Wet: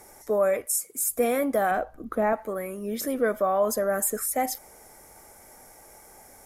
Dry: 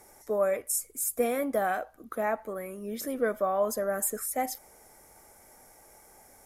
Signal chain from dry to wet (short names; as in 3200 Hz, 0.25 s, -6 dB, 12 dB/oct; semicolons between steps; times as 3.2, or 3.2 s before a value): 0.65–1.05 HPF 310 Hz -> 92 Hz 24 dB/oct; 1.71–2.33 tilt -2.5 dB/oct; in parallel at -2 dB: limiter -23 dBFS, peak gain reduction 7.5 dB